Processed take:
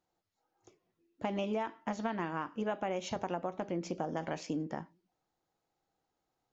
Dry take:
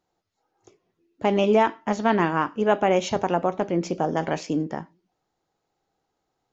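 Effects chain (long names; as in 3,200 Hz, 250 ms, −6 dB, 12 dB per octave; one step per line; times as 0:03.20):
notch filter 410 Hz, Q 12
downward compressor 6 to 1, threshold −25 dBFS, peak gain reduction 10.5 dB
level −6.5 dB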